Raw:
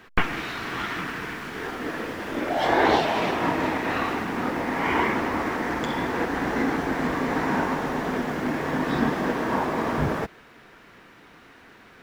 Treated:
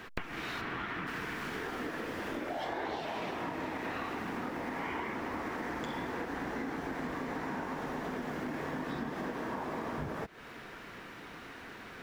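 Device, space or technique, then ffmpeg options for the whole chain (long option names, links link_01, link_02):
serial compression, peaks first: -filter_complex "[0:a]asplit=3[link_01][link_02][link_03];[link_01]afade=type=out:start_time=0.6:duration=0.02[link_04];[link_02]bass=frequency=250:gain=1,treble=frequency=4000:gain=-12,afade=type=in:start_time=0.6:duration=0.02,afade=type=out:start_time=1.06:duration=0.02[link_05];[link_03]afade=type=in:start_time=1.06:duration=0.02[link_06];[link_04][link_05][link_06]amix=inputs=3:normalize=0,acompressor=threshold=-34dB:ratio=5,acompressor=threshold=-45dB:ratio=1.5,volume=3dB"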